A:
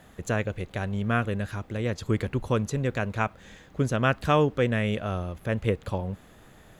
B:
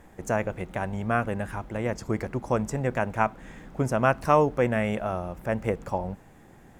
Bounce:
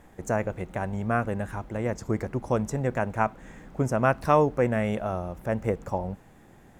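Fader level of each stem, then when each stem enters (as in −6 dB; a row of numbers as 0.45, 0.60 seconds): −14.5, −1.5 decibels; 0.00, 0.00 seconds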